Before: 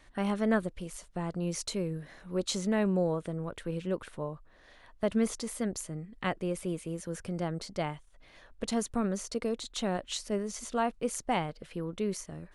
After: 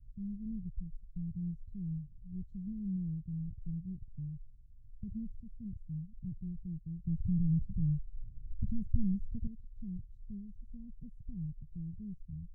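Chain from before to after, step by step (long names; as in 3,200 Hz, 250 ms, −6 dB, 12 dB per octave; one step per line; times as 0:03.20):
0:07.04–0:09.47: sine wavefolder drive 6 dB, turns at −18 dBFS
inverse Chebyshev low-pass filter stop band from 570 Hz, stop band 70 dB
level +8.5 dB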